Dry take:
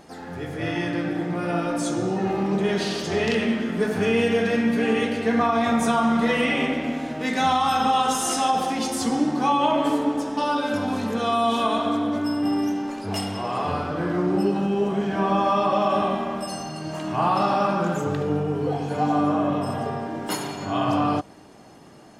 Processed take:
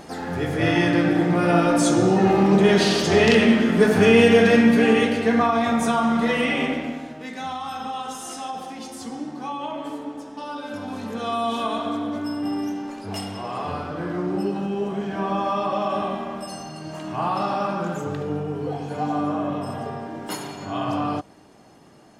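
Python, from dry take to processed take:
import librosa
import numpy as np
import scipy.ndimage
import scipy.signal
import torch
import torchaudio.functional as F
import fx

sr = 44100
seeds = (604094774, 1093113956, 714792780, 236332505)

y = fx.gain(x, sr, db=fx.line((4.54, 7.0), (5.7, 0.0), (6.74, 0.0), (7.32, -10.0), (10.42, -10.0), (11.34, -3.0)))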